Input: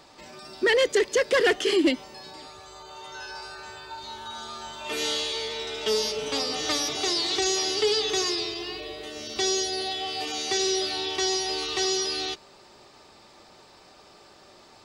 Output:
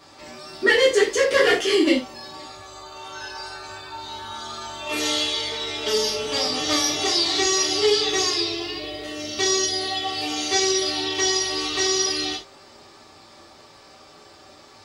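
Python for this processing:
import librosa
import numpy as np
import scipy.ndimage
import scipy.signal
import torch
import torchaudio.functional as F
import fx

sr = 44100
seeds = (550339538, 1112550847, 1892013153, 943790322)

y = fx.rev_gated(x, sr, seeds[0], gate_ms=120, shape='falling', drr_db=-6.0)
y = y * 10.0 ** (-2.5 / 20.0)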